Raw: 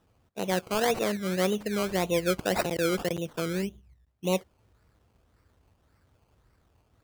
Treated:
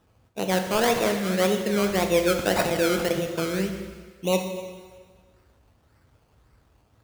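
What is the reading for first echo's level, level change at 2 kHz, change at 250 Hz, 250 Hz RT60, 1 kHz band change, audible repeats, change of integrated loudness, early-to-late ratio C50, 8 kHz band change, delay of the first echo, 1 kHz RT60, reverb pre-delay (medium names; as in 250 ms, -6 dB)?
no echo, +5.0 dB, +4.5 dB, 1.4 s, +5.0 dB, no echo, +4.5 dB, 6.5 dB, +5.0 dB, no echo, 1.6 s, 5 ms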